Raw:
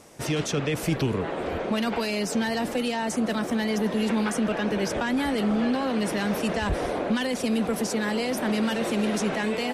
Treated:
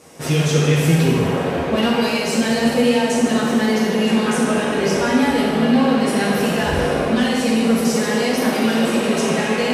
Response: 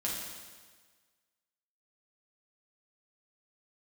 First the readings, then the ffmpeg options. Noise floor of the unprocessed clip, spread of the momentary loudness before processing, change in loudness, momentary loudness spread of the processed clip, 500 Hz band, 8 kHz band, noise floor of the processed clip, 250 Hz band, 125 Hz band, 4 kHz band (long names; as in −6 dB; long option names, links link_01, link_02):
−33 dBFS, 2 LU, +8.5 dB, 3 LU, +9.0 dB, +8.5 dB, −22 dBFS, +8.5 dB, +11.5 dB, +9.0 dB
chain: -filter_complex "[0:a]highpass=77[link_01];[1:a]atrim=start_sample=2205,asetrate=34398,aresample=44100[link_02];[link_01][link_02]afir=irnorm=-1:irlink=0,volume=2dB"